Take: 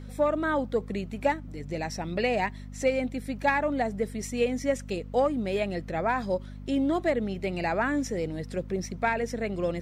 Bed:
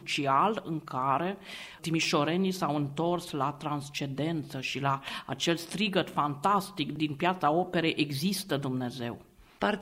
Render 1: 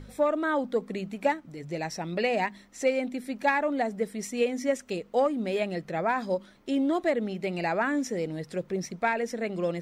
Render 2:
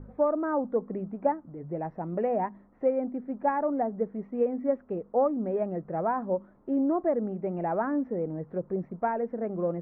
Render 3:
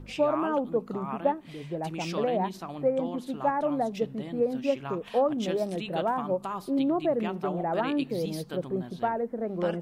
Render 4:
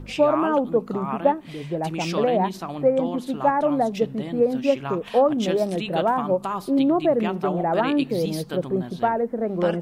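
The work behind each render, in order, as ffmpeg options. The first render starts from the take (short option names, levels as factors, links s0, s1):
-af "bandreject=f=50:t=h:w=4,bandreject=f=100:t=h:w=4,bandreject=f=150:t=h:w=4,bandreject=f=200:t=h:w=4,bandreject=f=250:t=h:w=4"
-af "lowpass=f=1200:w=0.5412,lowpass=f=1200:w=1.3066"
-filter_complex "[1:a]volume=0.355[s0];[0:a][s0]amix=inputs=2:normalize=0"
-af "volume=2.11"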